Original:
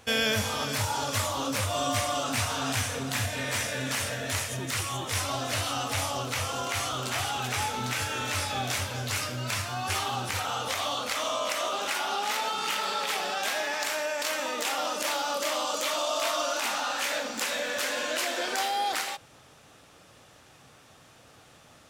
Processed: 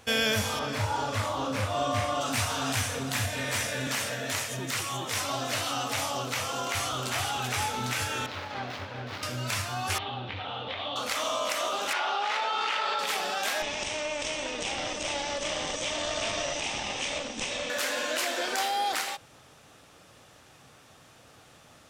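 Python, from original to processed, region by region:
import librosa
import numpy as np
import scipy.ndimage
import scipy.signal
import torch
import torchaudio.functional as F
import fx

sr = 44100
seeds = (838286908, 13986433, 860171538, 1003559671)

y = fx.chain(x, sr, fx.lowpass(hz=2200.0, slope=6),
    fx.doubler(ms=38.0, db=-5.0), at=(0.59, 2.21))
y = fx.chain(y, sr, fx.highpass(hz=120.0, slope=24),
    fx.peak_eq(hz=10000.0, db=-3.5, octaves=0.31), at=(3.87, 6.75))
y = fx.chain(y, sr, fx.self_delay(depth_ms=0.46),
    fx.highpass(hz=160.0, slope=6),
    fx.air_absorb(metres=260.0), at=(8.26, 9.23))
y = fx.chain(y, sr, fx.ellip_lowpass(hz=3600.0, order=4, stop_db=80),
    fx.peak_eq(hz=1300.0, db=-8.0, octaves=1.2),
    fx.transformer_sat(knee_hz=450.0), at=(9.98, 10.96))
y = fx.chain(y, sr, fx.bandpass_edges(low_hz=440.0, high_hz=3600.0),
    fx.env_flatten(amount_pct=100), at=(11.93, 12.99))
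y = fx.chain(y, sr, fx.lower_of_two(delay_ms=0.33),
    fx.ellip_lowpass(hz=8000.0, order=4, stop_db=60), at=(13.62, 17.7))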